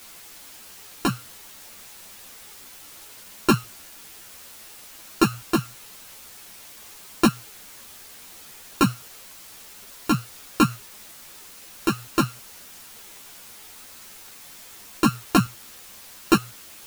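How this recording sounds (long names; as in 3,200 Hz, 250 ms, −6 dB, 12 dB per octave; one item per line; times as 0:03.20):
a buzz of ramps at a fixed pitch in blocks of 32 samples
tremolo saw up 1.1 Hz, depth 50%
a quantiser's noise floor 8 bits, dither triangular
a shimmering, thickened sound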